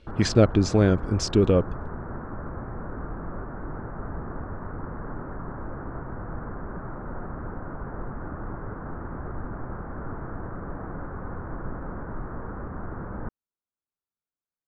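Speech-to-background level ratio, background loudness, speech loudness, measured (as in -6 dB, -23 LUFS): 15.5 dB, -37.0 LUFS, -21.5 LUFS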